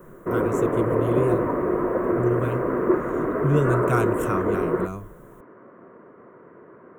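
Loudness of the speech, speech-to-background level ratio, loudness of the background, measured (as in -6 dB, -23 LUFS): -27.0 LUFS, -3.0 dB, -24.0 LUFS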